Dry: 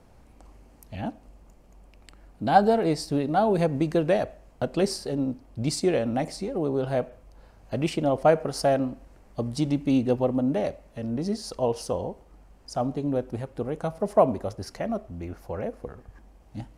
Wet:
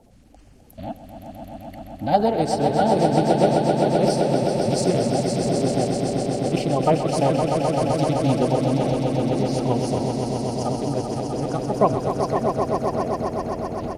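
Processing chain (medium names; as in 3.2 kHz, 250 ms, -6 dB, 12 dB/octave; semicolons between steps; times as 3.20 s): coarse spectral quantiser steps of 30 dB; tempo 1.2×; echo with a slow build-up 129 ms, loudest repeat 5, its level -6.5 dB; trim +1.5 dB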